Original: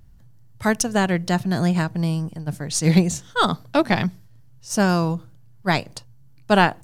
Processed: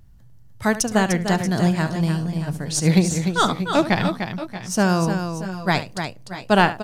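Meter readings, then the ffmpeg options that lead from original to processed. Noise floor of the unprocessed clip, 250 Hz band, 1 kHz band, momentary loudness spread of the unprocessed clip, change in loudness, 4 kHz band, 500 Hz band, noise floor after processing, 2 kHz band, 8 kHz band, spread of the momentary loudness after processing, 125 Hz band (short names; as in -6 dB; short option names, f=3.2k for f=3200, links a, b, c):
-48 dBFS, +1.0 dB, +0.5 dB, 11 LU, +0.5 dB, +1.0 dB, +1.0 dB, -45 dBFS, +1.0 dB, +1.0 dB, 10 LU, +1.0 dB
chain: -af "aecho=1:1:71|299|630|646:0.2|0.422|0.188|0.126"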